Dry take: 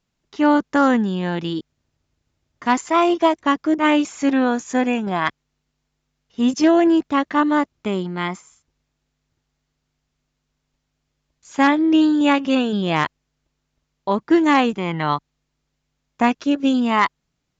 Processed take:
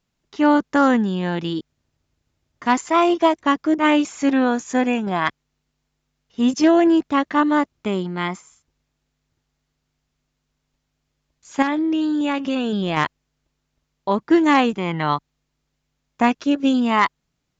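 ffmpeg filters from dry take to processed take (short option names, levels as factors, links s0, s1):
-filter_complex "[0:a]asettb=1/sr,asplit=3[s0][s1][s2];[s0]atrim=end=11.624[s3];[s1]atrim=start=11.62:end=12.97,asetpts=PTS-STARTPTS,afade=t=in:d=0.004:c=qsin,afade=t=out:st=1.346:d=0.004:c=qsin,acompressor=threshold=0.126:ratio=6:attack=3.2:release=140:knee=1:detection=peak[s4];[s2]atrim=start=12.966[s5];[s3][s4]acrossfade=d=0.004:c1=hsin:c2=qsin[s6];[s6][s5]acrossfade=d=0.004:c1=qsin:c2=hsin"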